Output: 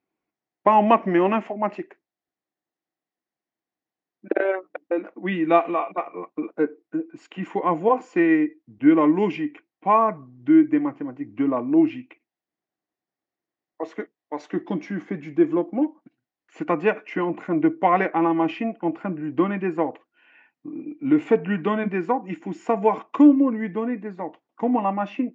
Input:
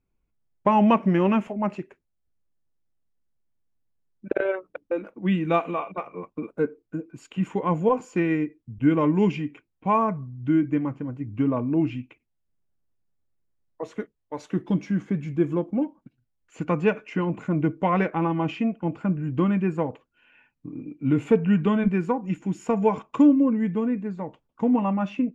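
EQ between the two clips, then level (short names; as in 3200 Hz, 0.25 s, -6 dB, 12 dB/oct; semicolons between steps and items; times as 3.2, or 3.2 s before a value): speaker cabinet 260–6100 Hz, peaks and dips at 320 Hz +8 dB, 730 Hz +9 dB, 1100 Hz +3 dB, 1900 Hz +8 dB; 0.0 dB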